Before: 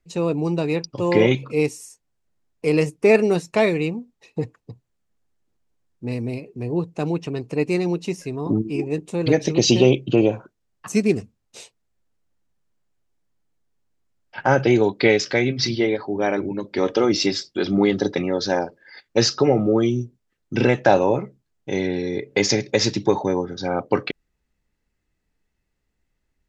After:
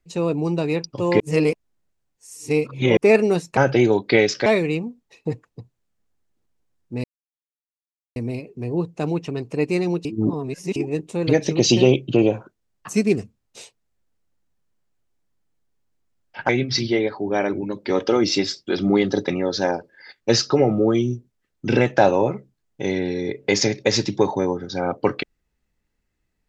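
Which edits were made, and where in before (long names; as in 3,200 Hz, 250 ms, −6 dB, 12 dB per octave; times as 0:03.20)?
0:01.20–0:02.97: reverse
0:06.15: splice in silence 1.12 s
0:08.04–0:08.75: reverse
0:14.48–0:15.37: move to 0:03.57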